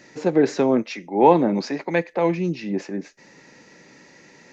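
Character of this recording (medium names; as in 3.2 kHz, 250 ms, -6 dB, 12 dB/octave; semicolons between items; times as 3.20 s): noise floor -51 dBFS; spectral tilt -4.0 dB/octave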